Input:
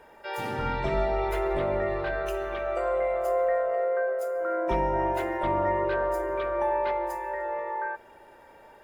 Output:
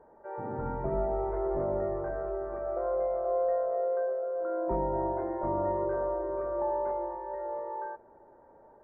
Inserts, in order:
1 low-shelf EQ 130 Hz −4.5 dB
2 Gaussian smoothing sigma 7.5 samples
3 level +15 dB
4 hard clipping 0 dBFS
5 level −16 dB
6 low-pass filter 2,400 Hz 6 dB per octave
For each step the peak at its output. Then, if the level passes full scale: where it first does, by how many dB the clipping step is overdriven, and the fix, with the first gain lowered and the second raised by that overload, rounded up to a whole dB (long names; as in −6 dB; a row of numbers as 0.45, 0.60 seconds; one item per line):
−15.5, −17.5, −2.5, −2.5, −18.5, −18.5 dBFS
no step passes full scale